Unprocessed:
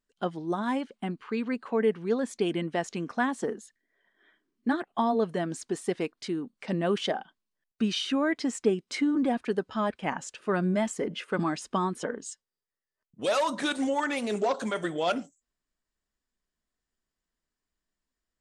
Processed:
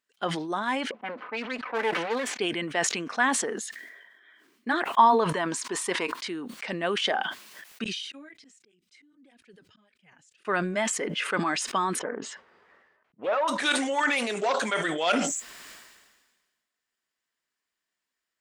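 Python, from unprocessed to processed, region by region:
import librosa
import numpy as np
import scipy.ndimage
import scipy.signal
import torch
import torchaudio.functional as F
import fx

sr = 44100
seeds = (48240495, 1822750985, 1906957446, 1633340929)

y = fx.chain(x, sr, fx.lower_of_two(delay_ms=4.0),
    fx.highpass(hz=260.0, slope=12),
    fx.env_lowpass(base_hz=510.0, full_db=-26.0), at=(0.91, 2.39))
y = fx.chain(y, sr, fx.peak_eq(hz=990.0, db=13.0, octaves=0.39),
    fx.notch(hz=750.0, q=8.5), at=(4.86, 6.27))
y = fx.chain(y, sr, fx.tone_stack(knobs='10-0-1'),
    fx.auto_swell(attack_ms=429.0),
    fx.flanger_cancel(hz=1.7, depth_ms=5.6), at=(7.84, 10.45))
y = fx.chain(y, sr, fx.lowpass(hz=1200.0, slope=12),
    fx.doppler_dist(depth_ms=0.15), at=(11.99, 13.48))
y = fx.highpass(y, sr, hz=640.0, slope=6)
y = fx.peak_eq(y, sr, hz=2200.0, db=5.5, octaves=1.5)
y = fx.sustainer(y, sr, db_per_s=41.0)
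y = F.gain(torch.from_numpy(y), 2.5).numpy()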